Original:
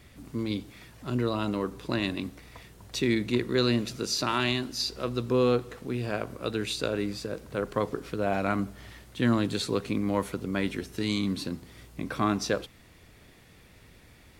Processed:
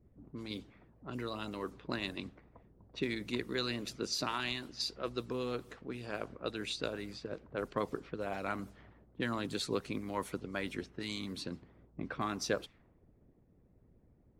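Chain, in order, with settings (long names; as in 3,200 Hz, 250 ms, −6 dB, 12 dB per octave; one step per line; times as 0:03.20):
low-pass that shuts in the quiet parts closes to 410 Hz, open at −25.5 dBFS
harmonic and percussive parts rebalanced harmonic −11 dB
level −4.5 dB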